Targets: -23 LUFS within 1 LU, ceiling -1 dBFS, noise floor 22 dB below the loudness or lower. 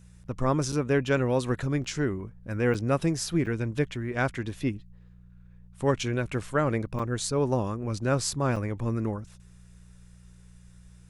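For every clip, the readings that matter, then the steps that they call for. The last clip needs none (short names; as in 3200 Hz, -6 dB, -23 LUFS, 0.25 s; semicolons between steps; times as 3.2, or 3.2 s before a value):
dropouts 6; longest dropout 5.2 ms; hum 60 Hz; harmonics up to 180 Hz; hum level -51 dBFS; loudness -28.5 LUFS; peak -10.5 dBFS; loudness target -23.0 LUFS
-> interpolate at 0.72/1.84/2.74/3.46/6.99/8.56, 5.2 ms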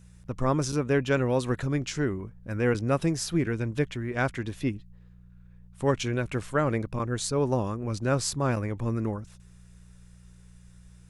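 dropouts 0; hum 60 Hz; harmonics up to 180 Hz; hum level -51 dBFS
-> de-hum 60 Hz, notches 3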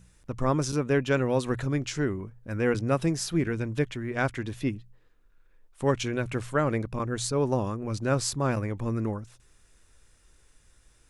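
hum none; loudness -28.5 LUFS; peak -10.5 dBFS; loudness target -23.0 LUFS
-> gain +5.5 dB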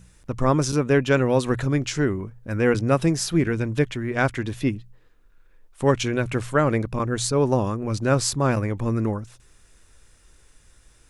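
loudness -23.0 LUFS; peak -5.0 dBFS; noise floor -56 dBFS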